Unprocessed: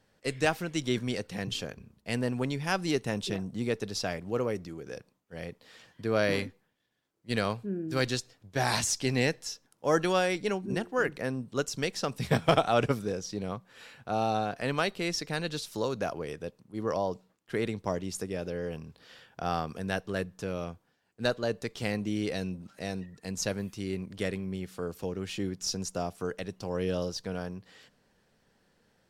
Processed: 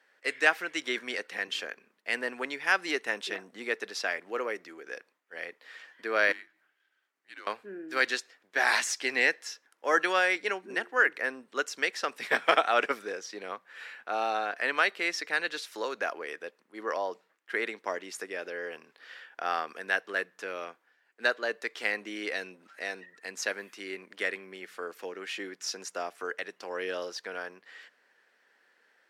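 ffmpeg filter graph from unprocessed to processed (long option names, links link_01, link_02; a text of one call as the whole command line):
ffmpeg -i in.wav -filter_complex "[0:a]asettb=1/sr,asplit=3[link_01][link_02][link_03];[link_01]atrim=end=6.324[link_04];[link_02]atrim=start=6.32:end=7.47,asetpts=PTS-STARTPTS,afade=type=in:duration=0.004:curve=qsin,afade=type=out:start_time=1.146:duration=0.004:curve=qsin,volume=19dB,asoftclip=hard,volume=-19dB,acompressor=threshold=-57dB:ratio=2:attack=3.2:release=140:knee=1:detection=peak,afreqshift=-170[link_05];[link_03]atrim=start=7.466[link_06];[link_04][link_05]acrossfade=duration=0.004:curve1=hsin:curve2=qsin[link_07];[link_07][link_06]acrossfade=duration=0.004:curve1=qsin:curve2=hsin,highpass=frequency=310:width=0.5412,highpass=frequency=310:width=1.3066,equalizer=frequency=1800:width_type=o:width=1.4:gain=14.5,volume=-4.5dB" out.wav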